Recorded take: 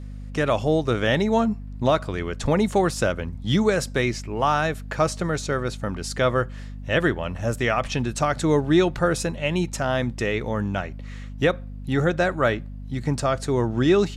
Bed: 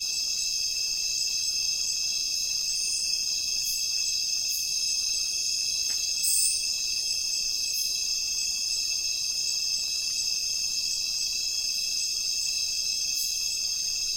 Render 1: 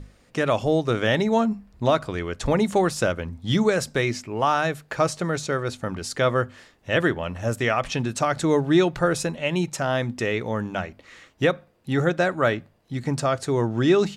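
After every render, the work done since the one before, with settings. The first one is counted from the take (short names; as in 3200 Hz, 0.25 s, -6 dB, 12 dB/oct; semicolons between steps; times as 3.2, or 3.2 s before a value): notches 50/100/150/200/250 Hz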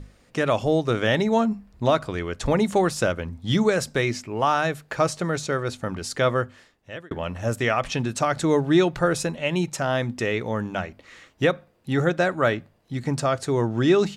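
6.28–7.11 fade out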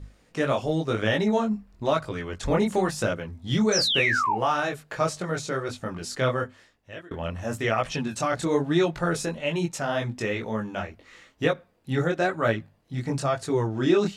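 3.72–4.36 painted sound fall 760–6300 Hz -21 dBFS; chorus voices 2, 0.96 Hz, delay 21 ms, depth 3.3 ms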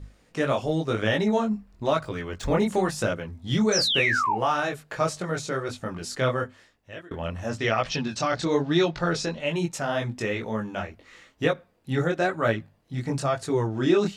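2.03–2.66 median filter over 3 samples; 7.49–9.4 synth low-pass 5000 Hz, resonance Q 2.1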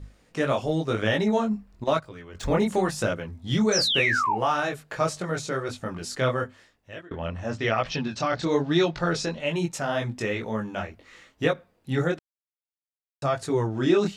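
1.84–2.35 gate -28 dBFS, range -10 dB; 7.01–8.44 air absorption 74 m; 12.19–13.22 mute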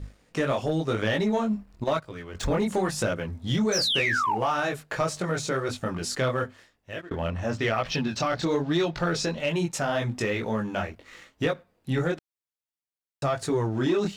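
compressor 2:1, threshold -28 dBFS, peak gain reduction 7.5 dB; sample leveller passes 1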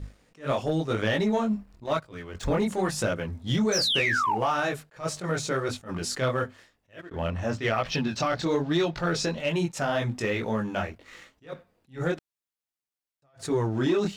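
attack slew limiter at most 240 dB/s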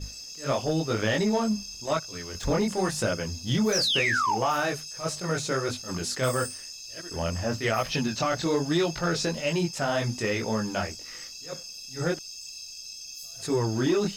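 add bed -13 dB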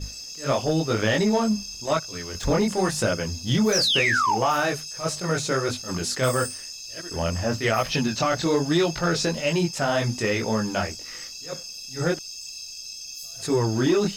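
gain +3.5 dB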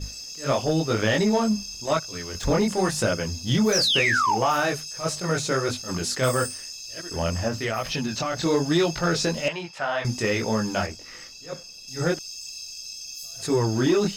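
7.48–8.43 compressor 2.5:1, threshold -25 dBFS; 9.48–10.05 three-band isolator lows -15 dB, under 590 Hz, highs -19 dB, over 3700 Hz; 10.86–11.88 high shelf 4200 Hz -9 dB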